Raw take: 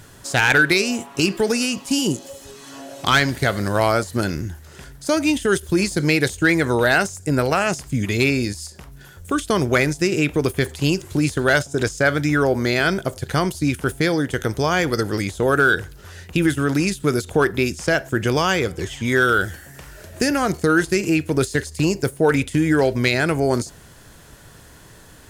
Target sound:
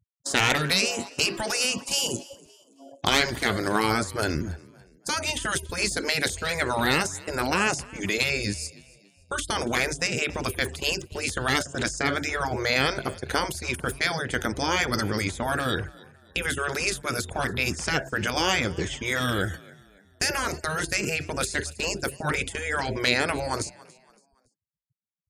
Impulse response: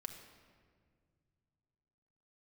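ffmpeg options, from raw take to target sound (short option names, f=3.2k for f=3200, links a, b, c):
-filter_complex "[0:a]afftfilt=real='re*lt(hypot(re,im),0.447)':imag='im*lt(hypot(re,im),0.447)':win_size=1024:overlap=0.75,agate=range=-18dB:threshold=-34dB:ratio=16:detection=peak,afftfilt=real='re*gte(hypot(re,im),0.00794)':imag='im*gte(hypot(re,im),0.00794)':win_size=1024:overlap=0.75,asplit=4[a][b][c][d];[b]adelay=282,afreqshift=47,volume=-22.5dB[e];[c]adelay=564,afreqshift=94,volume=-30.9dB[f];[d]adelay=846,afreqshift=141,volume=-39.3dB[g];[a][e][f][g]amix=inputs=4:normalize=0"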